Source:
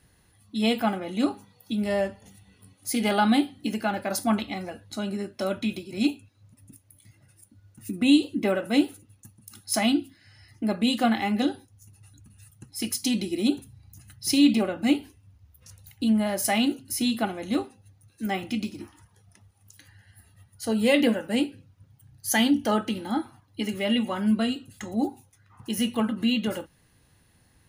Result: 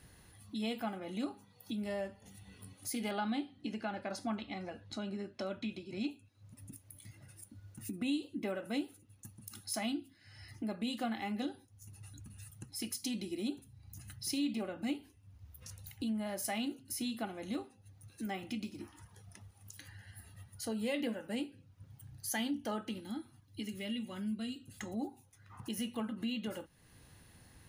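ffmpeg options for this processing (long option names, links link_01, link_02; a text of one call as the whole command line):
ffmpeg -i in.wav -filter_complex "[0:a]asettb=1/sr,asplit=3[link_01][link_02][link_03];[link_01]atrim=end=3.114[link_04];[link_02]atrim=start=3.11:end=6.11,asetpts=PTS-STARTPTS,afade=type=in:duration=0.004:curve=qsin,afade=type=out:start_time=2.996:duration=0.004:curve=qsin,lowpass=5600[link_05];[link_03]atrim=start=6.106[link_06];[link_04][link_05]acrossfade=duration=0.004:curve1=hsin:curve2=qsin[link_07];[link_07][link_06]acrossfade=duration=0.004:curve1=qsin:curve2=hsin,asettb=1/sr,asplit=3[link_08][link_09][link_10];[link_08]atrim=end=23.004[link_11];[link_09]atrim=start=23:end=24.67,asetpts=PTS-STARTPTS,afade=type=in:duration=0.004:curve=qsin,afade=type=out:start_time=1.666:duration=0.004:curve=qsin,equalizer=frequency=870:width=0.62:gain=-13[link_12];[link_10]atrim=start=24.666[link_13];[link_11][link_12]acrossfade=duration=0.004:curve1=hsin:curve2=qsin[link_14];[link_14][link_13]acrossfade=duration=0.004:curve1=qsin:curve2=hsin,acompressor=threshold=-50dB:ratio=2,volume=2dB" out.wav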